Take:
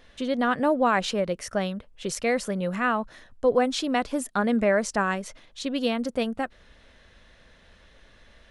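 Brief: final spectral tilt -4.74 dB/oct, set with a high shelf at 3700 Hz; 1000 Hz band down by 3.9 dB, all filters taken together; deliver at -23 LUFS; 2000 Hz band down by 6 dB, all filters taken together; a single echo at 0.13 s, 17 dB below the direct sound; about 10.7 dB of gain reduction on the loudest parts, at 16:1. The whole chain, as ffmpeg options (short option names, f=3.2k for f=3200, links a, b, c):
-af "equalizer=f=1k:t=o:g=-3.5,equalizer=f=2k:t=o:g=-4.5,highshelf=f=3.7k:g=-9,acompressor=threshold=-28dB:ratio=16,aecho=1:1:130:0.141,volume=11dB"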